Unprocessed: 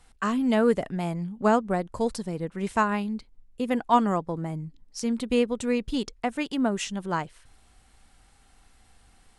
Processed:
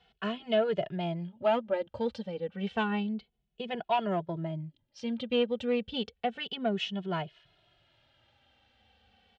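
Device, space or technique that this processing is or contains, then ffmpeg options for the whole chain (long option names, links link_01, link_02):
barber-pole flanger into a guitar amplifier: -filter_complex "[0:a]asplit=2[link_01][link_02];[link_02]adelay=2.3,afreqshift=-0.3[link_03];[link_01][link_03]amix=inputs=2:normalize=1,asoftclip=type=tanh:threshold=-18dB,highpass=100,equalizer=frequency=280:width_type=q:width=4:gain=-10,equalizer=frequency=610:width_type=q:width=4:gain=5,equalizer=frequency=1100:width_type=q:width=4:gain=-10,equalizer=frequency=2000:width_type=q:width=4:gain=-3,equalizer=frequency=3100:width_type=q:width=4:gain=9,lowpass=frequency=4000:width=0.5412,lowpass=frequency=4000:width=1.3066"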